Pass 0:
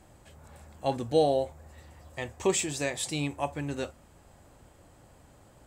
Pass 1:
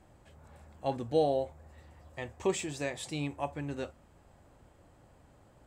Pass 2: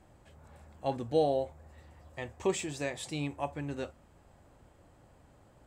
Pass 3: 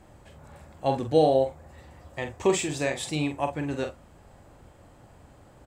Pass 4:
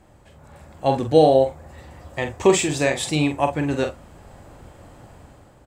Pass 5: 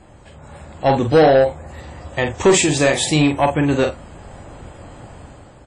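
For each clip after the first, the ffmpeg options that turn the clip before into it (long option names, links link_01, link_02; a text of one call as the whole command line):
ffmpeg -i in.wav -af "highshelf=frequency=4400:gain=-8.5,volume=-3.5dB" out.wav
ffmpeg -i in.wav -af anull out.wav
ffmpeg -i in.wav -filter_complex "[0:a]asplit=2[link_01][link_02];[link_02]adelay=45,volume=-8dB[link_03];[link_01][link_03]amix=inputs=2:normalize=0,volume=7dB" out.wav
ffmpeg -i in.wav -af "dynaudnorm=framelen=250:gausssize=5:maxgain=8dB" out.wav
ffmpeg -i in.wav -af "asoftclip=type=tanh:threshold=-13.5dB,volume=7dB" -ar 48000 -c:a wmav2 -b:a 32k out.wma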